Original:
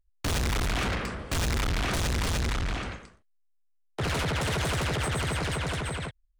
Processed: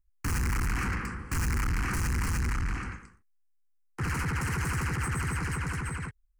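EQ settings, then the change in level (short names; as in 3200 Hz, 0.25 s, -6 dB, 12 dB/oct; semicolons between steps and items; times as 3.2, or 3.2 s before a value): notch 420 Hz, Q 12; fixed phaser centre 1500 Hz, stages 4; 0.0 dB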